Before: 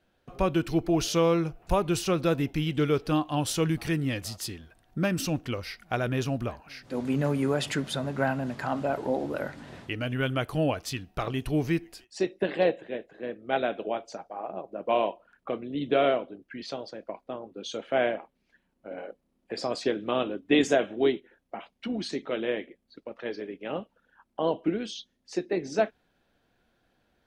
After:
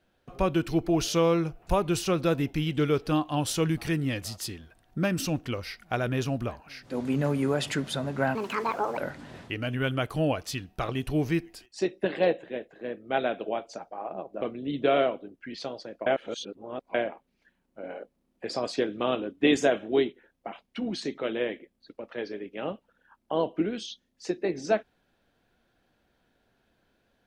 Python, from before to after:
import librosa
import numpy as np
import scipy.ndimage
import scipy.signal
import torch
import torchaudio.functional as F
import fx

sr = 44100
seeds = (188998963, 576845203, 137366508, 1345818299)

y = fx.edit(x, sr, fx.speed_span(start_s=8.35, length_s=1.01, speed=1.62),
    fx.cut(start_s=14.8, length_s=0.69),
    fx.reverse_span(start_s=17.14, length_s=0.88), tone=tone)